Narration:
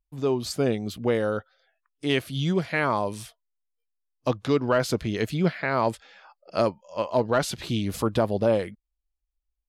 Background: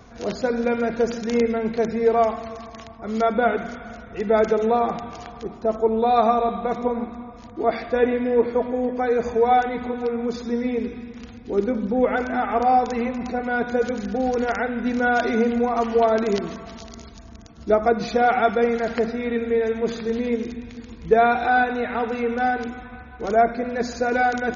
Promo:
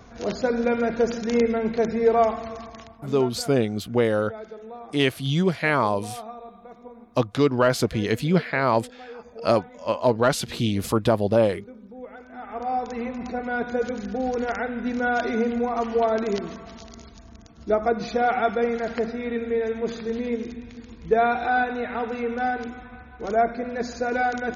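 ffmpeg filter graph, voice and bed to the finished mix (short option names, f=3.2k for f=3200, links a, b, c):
-filter_complex "[0:a]adelay=2900,volume=3dB[a];[1:a]volume=16dB,afade=t=out:st=2.6:d=0.68:silence=0.105925,afade=t=in:st=12.27:d=1:silence=0.149624[b];[a][b]amix=inputs=2:normalize=0"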